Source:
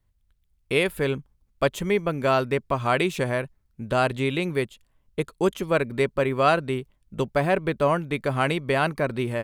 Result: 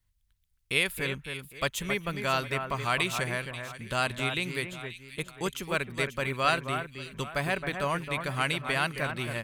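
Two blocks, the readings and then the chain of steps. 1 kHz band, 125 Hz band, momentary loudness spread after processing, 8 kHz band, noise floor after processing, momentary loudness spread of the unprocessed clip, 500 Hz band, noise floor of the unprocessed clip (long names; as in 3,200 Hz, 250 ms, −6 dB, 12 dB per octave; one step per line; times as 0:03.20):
−5.5 dB, −6.0 dB, 10 LU, +3.0 dB, −71 dBFS, 9 LU, −10.5 dB, −68 dBFS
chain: guitar amp tone stack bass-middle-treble 5-5-5
delay that swaps between a low-pass and a high-pass 268 ms, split 2,200 Hz, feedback 56%, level −7 dB
level +8.5 dB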